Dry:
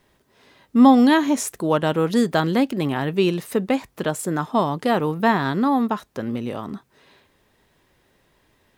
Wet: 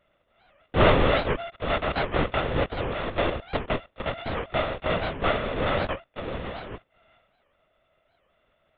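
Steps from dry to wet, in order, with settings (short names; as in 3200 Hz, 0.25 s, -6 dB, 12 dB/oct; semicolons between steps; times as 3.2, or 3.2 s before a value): sample sorter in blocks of 64 samples; LPC vocoder at 8 kHz whisper; record warp 78 rpm, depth 250 cents; gain -6 dB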